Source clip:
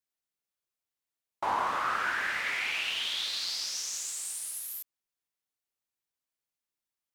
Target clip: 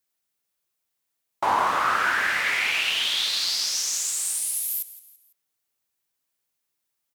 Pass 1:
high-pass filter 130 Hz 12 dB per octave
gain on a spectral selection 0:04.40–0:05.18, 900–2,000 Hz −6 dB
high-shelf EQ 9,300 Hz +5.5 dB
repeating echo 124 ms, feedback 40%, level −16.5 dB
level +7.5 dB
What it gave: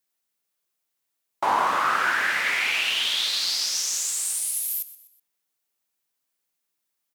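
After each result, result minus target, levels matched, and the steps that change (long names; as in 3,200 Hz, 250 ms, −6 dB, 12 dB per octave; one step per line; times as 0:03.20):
echo 43 ms early; 125 Hz band −3.0 dB
change: repeating echo 167 ms, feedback 40%, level −16.5 dB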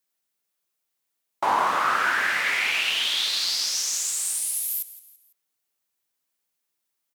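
125 Hz band −3.0 dB
change: high-pass filter 47 Hz 12 dB per octave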